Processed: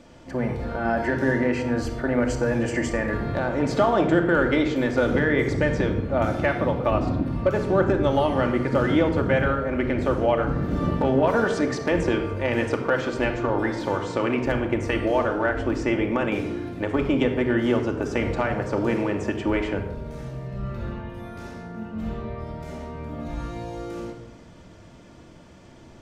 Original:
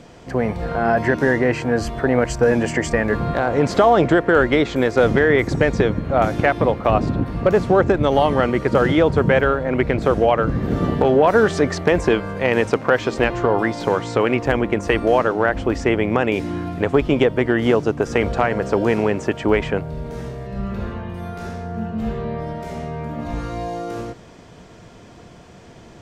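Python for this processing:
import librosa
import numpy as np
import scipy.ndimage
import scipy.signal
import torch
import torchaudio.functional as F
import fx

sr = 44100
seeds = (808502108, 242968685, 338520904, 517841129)

y = fx.room_shoebox(x, sr, seeds[0], volume_m3=3000.0, walls='furnished', distance_m=2.5)
y = y * 10.0 ** (-7.5 / 20.0)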